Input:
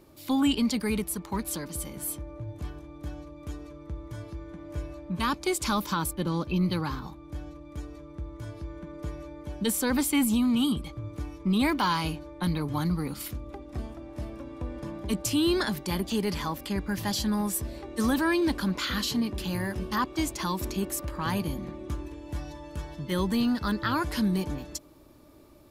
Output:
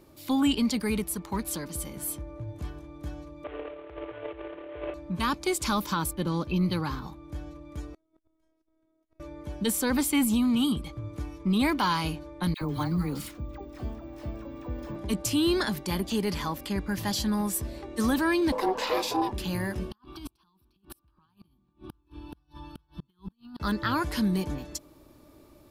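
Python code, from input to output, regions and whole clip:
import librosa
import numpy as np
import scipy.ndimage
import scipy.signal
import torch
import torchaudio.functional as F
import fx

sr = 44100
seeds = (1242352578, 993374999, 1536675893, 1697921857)

y = fx.chain(x, sr, fx.cvsd(bps=16000),
    fx.transient(attack_db=-3, sustain_db=12),
    fx.low_shelf_res(hz=300.0, db=-13.5, q=3.0), at=(3.44, 4.94))
y = fx.chain(y, sr, fx.robotise(hz=319.0),
    fx.over_compress(threshold_db=-41.0, ratio=-0.5),
    fx.gate_flip(shuts_db=-35.0, range_db=-31), at=(7.94, 9.2))
y = fx.chain(y, sr, fx.peak_eq(hz=12000.0, db=-6.0, octaves=0.88),
    fx.dispersion(late='lows', ms=73.0, hz=900.0),
    fx.resample_bad(factor=2, down='none', up='hold'), at=(12.54, 14.96))
y = fx.chain(y, sr, fx.ring_mod(carrier_hz=560.0),
    fx.small_body(hz=(500.0, 1000.0), ring_ms=25, db=14), at=(18.52, 19.32))
y = fx.chain(y, sr, fx.over_compress(threshold_db=-31.0, ratio=-0.5),
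    fx.fixed_phaser(hz=2000.0, stages=6),
    fx.gate_flip(shuts_db=-28.0, range_db=-34), at=(19.91, 23.6))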